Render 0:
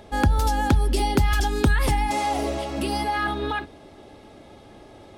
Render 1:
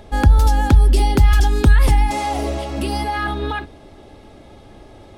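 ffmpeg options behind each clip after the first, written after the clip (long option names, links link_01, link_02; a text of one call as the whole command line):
ffmpeg -i in.wav -af "lowshelf=frequency=74:gain=12,volume=2dB" out.wav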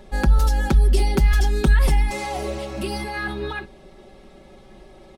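ffmpeg -i in.wav -af "aecho=1:1:5.3:0.95,volume=-6dB" out.wav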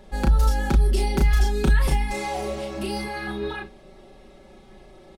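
ffmpeg -i in.wav -filter_complex "[0:a]asplit=2[link_01][link_02];[link_02]adelay=34,volume=-3dB[link_03];[link_01][link_03]amix=inputs=2:normalize=0,volume=-3.5dB" out.wav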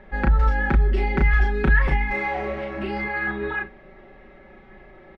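ffmpeg -i in.wav -af "lowpass=frequency=1900:width_type=q:width=3.3" out.wav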